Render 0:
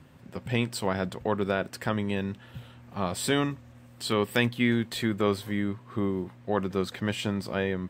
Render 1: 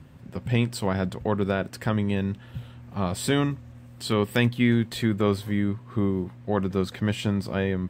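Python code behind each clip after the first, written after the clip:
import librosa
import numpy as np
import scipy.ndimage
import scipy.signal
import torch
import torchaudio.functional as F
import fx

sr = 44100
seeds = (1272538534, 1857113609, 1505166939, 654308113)

y = fx.low_shelf(x, sr, hz=200.0, db=9.0)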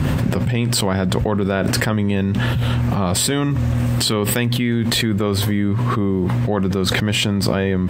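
y = fx.env_flatten(x, sr, amount_pct=100)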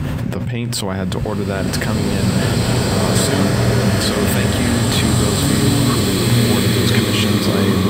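y = fx.rev_bloom(x, sr, seeds[0], attack_ms=2320, drr_db=-5.0)
y = F.gain(torch.from_numpy(y), -2.5).numpy()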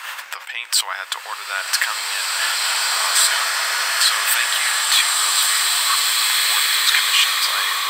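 y = scipy.signal.sosfilt(scipy.signal.cheby2(4, 80, 180.0, 'highpass', fs=sr, output='sos'), x)
y = F.gain(torch.from_numpy(y), 5.5).numpy()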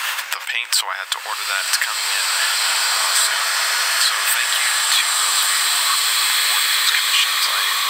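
y = fx.band_squash(x, sr, depth_pct=70)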